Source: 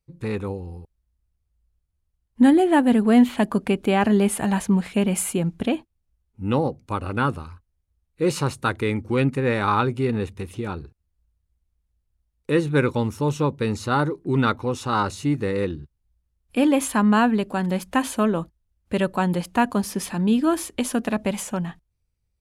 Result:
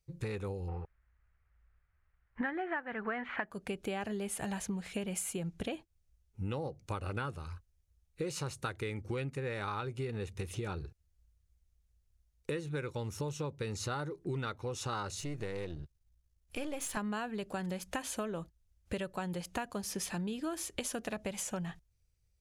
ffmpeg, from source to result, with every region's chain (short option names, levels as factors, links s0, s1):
-filter_complex "[0:a]asettb=1/sr,asplit=3[s0][s1][s2];[s0]atrim=end=0.684[s3];[s1]atrim=start=0.68:end=3.51,asetpts=PTS-STARTPTS,afade=t=in:d=0.004:c=qsin,afade=t=out:st=2.826:d=0.004:c=qsin,lowpass=f=2000:t=q:w=2.1,equalizer=f=1300:w=0.8:g=14.5[s4];[s2]atrim=start=3.506[s5];[s3][s4]acrossfade=d=0.004:c1=hsin:c2=qsin[s6];[s6][s5]acrossfade=d=0.004:c1=qsin:c2=hsin,asettb=1/sr,asplit=3[s7][s8][s9];[s7]atrim=end=15.204[s10];[s8]atrim=start=15.2:end=16.97,asetpts=PTS-STARTPTS,afade=t=in:d=0.004:c=qsin,afade=t=out:st=1.766:d=0.004:c=qsin,aeval=exprs='if(lt(val(0),0),0.447*val(0),val(0))':c=same,acompressor=threshold=0.0126:ratio=1.5:attack=3.2:release=140:knee=1:detection=peak[s11];[s9]atrim=start=16.966[s12];[s10][s11]acrossfade=d=0.004:c1=hsin:c2=qsin[s13];[s13][s12]acrossfade=d=0.004:c1=qsin:c2=hsin,equalizer=f=250:t=o:w=0.67:g=-10,equalizer=f=1000:t=o:w=0.67:g=-5,equalizer=f=6300:t=o:w=0.67:g=5,acompressor=threshold=0.02:ratio=12"